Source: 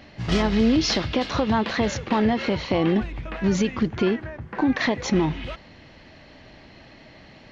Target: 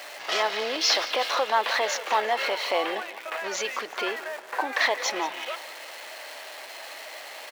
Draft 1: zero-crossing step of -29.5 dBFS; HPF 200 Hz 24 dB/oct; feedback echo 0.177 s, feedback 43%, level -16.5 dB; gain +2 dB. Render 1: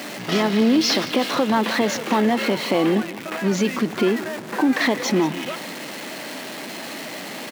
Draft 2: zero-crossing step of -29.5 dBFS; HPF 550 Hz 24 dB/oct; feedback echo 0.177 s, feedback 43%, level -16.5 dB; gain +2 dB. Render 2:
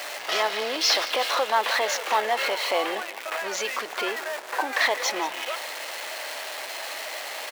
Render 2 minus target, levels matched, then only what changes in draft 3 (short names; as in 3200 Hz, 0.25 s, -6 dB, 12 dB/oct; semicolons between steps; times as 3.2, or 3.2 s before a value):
zero-crossing step: distortion +7 dB
change: zero-crossing step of -37.5 dBFS